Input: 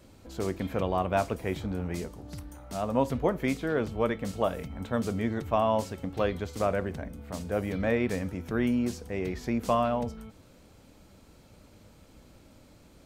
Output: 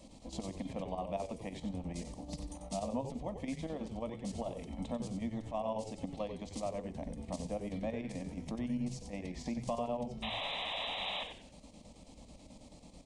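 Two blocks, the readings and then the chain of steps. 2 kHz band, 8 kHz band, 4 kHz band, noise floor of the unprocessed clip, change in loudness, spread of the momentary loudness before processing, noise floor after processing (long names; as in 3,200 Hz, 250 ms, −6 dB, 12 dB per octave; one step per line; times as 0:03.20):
−9.0 dB, −4.0 dB, +3.5 dB, −56 dBFS, −9.5 dB, 12 LU, −56 dBFS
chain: downward compressor 5 to 1, threshold −36 dBFS, peak gain reduction 15 dB
square-wave tremolo 9.2 Hz, depth 60%, duty 70%
sound drawn into the spectrogram noise, 0:10.22–0:11.24, 520–4,000 Hz −39 dBFS
phaser with its sweep stopped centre 400 Hz, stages 6
echo with shifted repeats 92 ms, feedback 31%, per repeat −110 Hz, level −8 dB
downsampling to 22,050 Hz
level +3.5 dB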